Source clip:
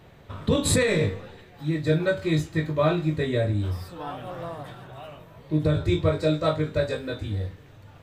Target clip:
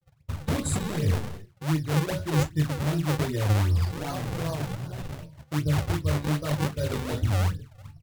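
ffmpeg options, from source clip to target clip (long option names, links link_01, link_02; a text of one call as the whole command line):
ffmpeg -i in.wav -filter_complex "[0:a]agate=range=-33dB:threshold=-41dB:ratio=3:detection=peak,areverse,acompressor=threshold=-30dB:ratio=16,areverse,afftdn=noise_reduction=22:noise_floor=-49,bass=frequency=250:gain=9,treble=frequency=4000:gain=7,acrossover=split=300[link_01][link_02];[link_02]acompressor=threshold=-30dB:ratio=10[link_03];[link_01][link_03]amix=inputs=2:normalize=0,acrossover=split=4100[link_04][link_05];[link_04]acrusher=samples=38:mix=1:aa=0.000001:lfo=1:lforange=60.8:lforate=2.6[link_06];[link_06][link_05]amix=inputs=2:normalize=0,asetrate=42845,aresample=44100,atempo=1.0293,flanger=delay=5.2:depth=8.7:regen=67:speed=1.2:shape=sinusoidal,volume=7dB" out.wav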